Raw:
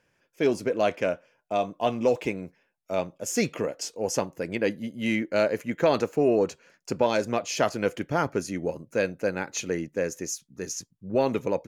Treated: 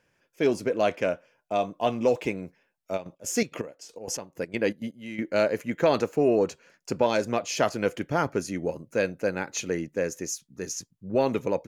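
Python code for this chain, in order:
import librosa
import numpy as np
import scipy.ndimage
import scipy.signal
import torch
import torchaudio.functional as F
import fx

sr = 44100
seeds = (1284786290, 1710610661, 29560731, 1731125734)

y = fx.step_gate(x, sr, bpm=162, pattern='x.x..x.xx.x...', floor_db=-12.0, edge_ms=4.5, at=(2.96, 5.18), fade=0.02)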